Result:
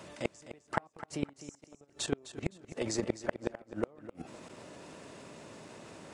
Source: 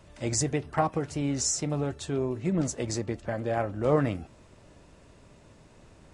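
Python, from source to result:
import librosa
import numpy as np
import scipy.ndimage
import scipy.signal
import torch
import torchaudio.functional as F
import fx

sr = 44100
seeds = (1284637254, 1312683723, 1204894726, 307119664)

p1 = scipy.signal.sosfilt(scipy.signal.butter(2, 200.0, 'highpass', fs=sr, output='sos'), x)
p2 = fx.level_steps(p1, sr, step_db=15)
p3 = fx.gate_flip(p2, sr, shuts_db=-25.0, range_db=-36)
p4 = p3 + fx.echo_feedback(p3, sr, ms=257, feedback_pct=26, wet_db=-13.0, dry=0)
y = p4 * librosa.db_to_amplitude(10.0)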